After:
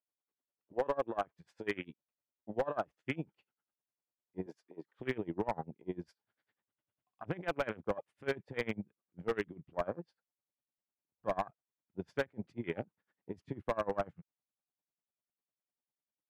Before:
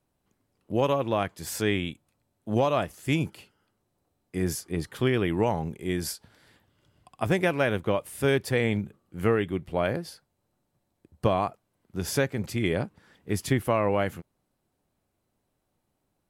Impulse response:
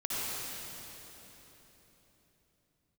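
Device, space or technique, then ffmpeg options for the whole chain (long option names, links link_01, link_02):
helicopter radio: -filter_complex "[0:a]afwtdn=0.0282,highpass=380,lowpass=2700,aeval=exprs='val(0)*pow(10,-25*(0.5-0.5*cos(2*PI*10*n/s))/20)':channel_layout=same,asoftclip=type=hard:threshold=-22.5dB,asettb=1/sr,asplit=3[link_01][link_02][link_03];[link_01]atrim=end=4.464[link_04];[link_02]atrim=start=4.46:end=5,asetpts=PTS-STARTPTS,afade=type=in:duration=0.004:curve=qsin,afade=type=out:start_time=0.536:duration=0.004:curve=qsin,highpass=340[link_05];[link_03]atrim=start=4.996[link_06];[link_04][link_05]acrossfade=duration=0.004:curve1=hsin:curve2=qsin[link_07];[link_07][link_06]acrossfade=duration=0.004:curve1=qsin:curve2=hsin,asubboost=boost=4:cutoff=180"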